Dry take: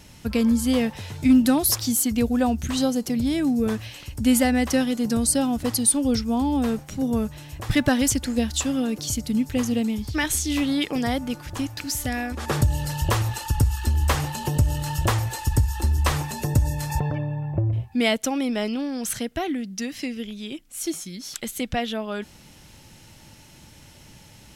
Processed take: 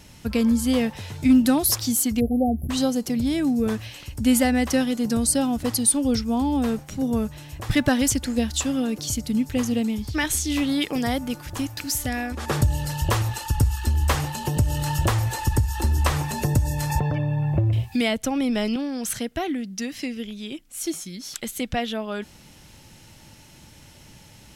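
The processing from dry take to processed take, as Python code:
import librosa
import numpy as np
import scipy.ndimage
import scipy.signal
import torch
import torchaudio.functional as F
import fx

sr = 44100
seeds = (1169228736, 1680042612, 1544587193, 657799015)

y = fx.spec_erase(x, sr, start_s=2.2, length_s=0.5, low_hz=810.0, high_hz=10000.0)
y = fx.high_shelf(y, sr, hz=9900.0, db=6.5, at=(10.69, 11.98))
y = fx.band_squash(y, sr, depth_pct=70, at=(14.57, 18.76))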